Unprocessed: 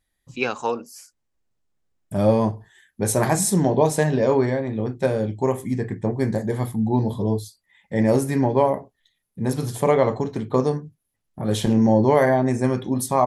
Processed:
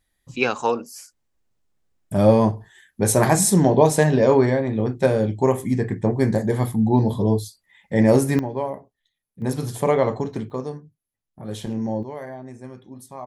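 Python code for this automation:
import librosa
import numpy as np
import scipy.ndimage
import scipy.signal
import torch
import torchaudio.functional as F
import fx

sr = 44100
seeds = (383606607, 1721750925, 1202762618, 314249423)

y = fx.gain(x, sr, db=fx.steps((0.0, 3.0), (8.39, -8.0), (9.42, -1.0), (10.5, -9.0), (12.03, -17.5)))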